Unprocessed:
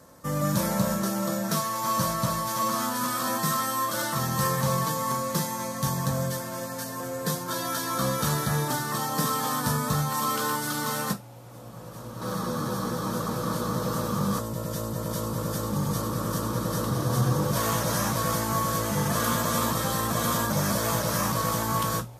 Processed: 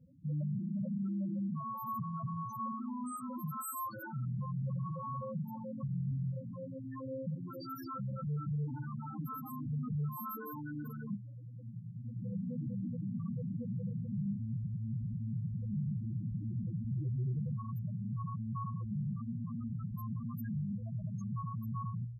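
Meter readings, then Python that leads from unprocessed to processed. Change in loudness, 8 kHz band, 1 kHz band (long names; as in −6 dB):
−12.0 dB, below −25 dB, −16.5 dB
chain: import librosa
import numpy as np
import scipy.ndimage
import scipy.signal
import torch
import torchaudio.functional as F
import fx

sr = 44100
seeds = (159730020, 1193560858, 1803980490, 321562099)

y = fx.peak_eq(x, sr, hz=840.0, db=-9.0, octaves=2.4)
y = np.clip(10.0 ** (32.5 / 20.0) * y, -1.0, 1.0) / 10.0 ** (32.5 / 20.0)
y = fx.spec_topn(y, sr, count=4)
y = y * librosa.db_to_amplitude(1.0)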